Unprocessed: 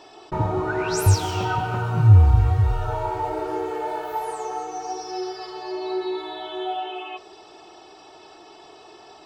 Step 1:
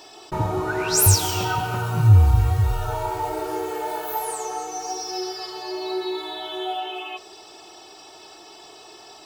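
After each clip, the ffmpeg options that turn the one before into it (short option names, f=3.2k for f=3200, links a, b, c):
-af "aemphasis=mode=production:type=75fm"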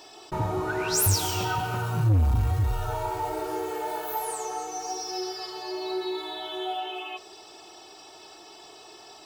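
-af "asoftclip=type=tanh:threshold=-14dB,volume=-3dB"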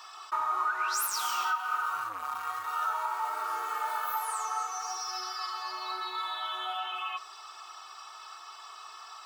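-af "highpass=f=1.2k:t=q:w=8.6,alimiter=limit=-18.5dB:level=0:latency=1:release=417,volume=-2.5dB"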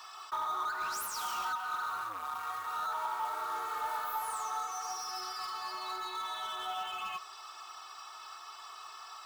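-filter_complex "[0:a]acrusher=bits=5:mode=log:mix=0:aa=0.000001,acrossover=split=950[a][b];[b]asoftclip=type=tanh:threshold=-36dB[c];[a][c]amix=inputs=2:normalize=0,volume=-1dB"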